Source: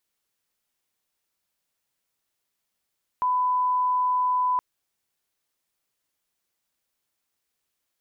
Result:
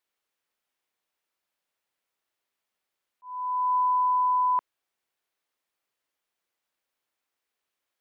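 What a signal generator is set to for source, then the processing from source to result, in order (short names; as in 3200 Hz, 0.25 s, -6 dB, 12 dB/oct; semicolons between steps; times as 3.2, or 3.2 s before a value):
line-up tone -20 dBFS 1.37 s
tone controls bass -10 dB, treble -8 dB; auto swell 0.543 s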